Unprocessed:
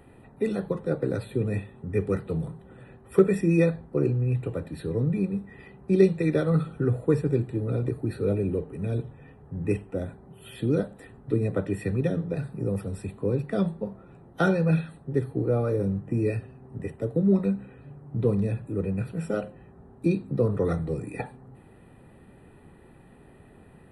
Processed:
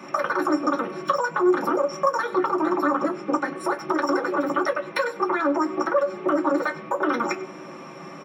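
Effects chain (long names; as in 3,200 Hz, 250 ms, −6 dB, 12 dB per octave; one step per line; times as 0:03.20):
downward compressor 6 to 1, threshold −32 dBFS, peak gain reduction 18 dB
change of speed 2.9×
single-tap delay 99 ms −18.5 dB
convolution reverb RT60 0.15 s, pre-delay 3 ms, DRR −0.5 dB
level +4 dB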